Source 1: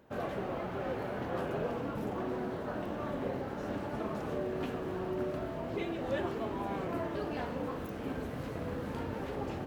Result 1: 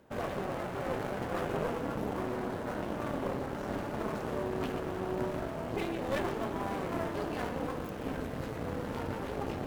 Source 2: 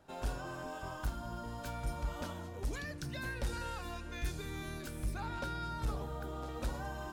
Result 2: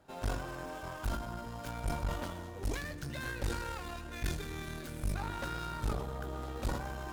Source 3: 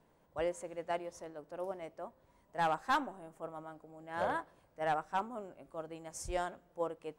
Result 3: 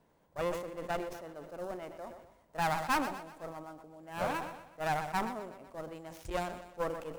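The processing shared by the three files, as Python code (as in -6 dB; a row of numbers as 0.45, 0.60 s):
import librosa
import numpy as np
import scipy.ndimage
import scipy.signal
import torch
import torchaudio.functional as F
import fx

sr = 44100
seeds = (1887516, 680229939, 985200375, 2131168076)

p1 = fx.dead_time(x, sr, dead_ms=0.064)
p2 = fx.cheby_harmonics(p1, sr, harmonics=(4,), levels_db=(-12,), full_scale_db=-22.0)
p3 = p2 + fx.echo_feedback(p2, sr, ms=123, feedback_pct=56, wet_db=-15.0, dry=0)
y = fx.sustainer(p3, sr, db_per_s=68.0)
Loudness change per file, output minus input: +1.5, +2.0, +1.5 LU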